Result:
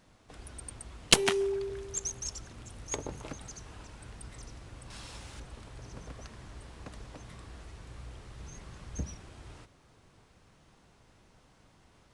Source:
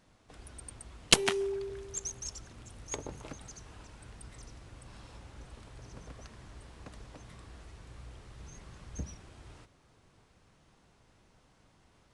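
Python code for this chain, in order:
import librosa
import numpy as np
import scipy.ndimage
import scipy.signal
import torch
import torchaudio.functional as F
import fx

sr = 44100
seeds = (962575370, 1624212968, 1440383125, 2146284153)

p1 = fx.high_shelf(x, sr, hz=2100.0, db=10.5, at=(4.9, 5.4))
p2 = np.clip(10.0 ** (25.0 / 20.0) * p1, -1.0, 1.0) / 10.0 ** (25.0 / 20.0)
y = p1 + F.gain(torch.from_numpy(p2), -8.0).numpy()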